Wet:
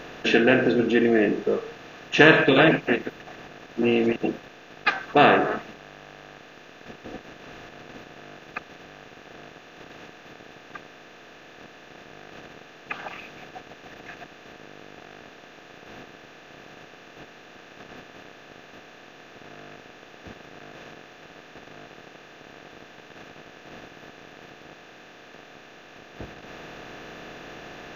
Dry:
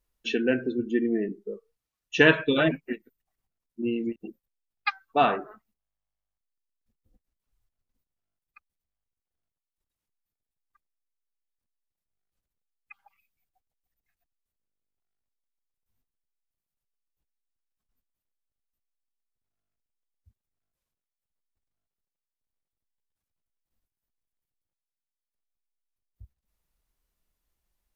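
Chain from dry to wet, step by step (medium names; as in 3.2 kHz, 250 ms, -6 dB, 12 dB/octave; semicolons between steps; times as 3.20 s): spectral levelling over time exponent 0.4; trim +1 dB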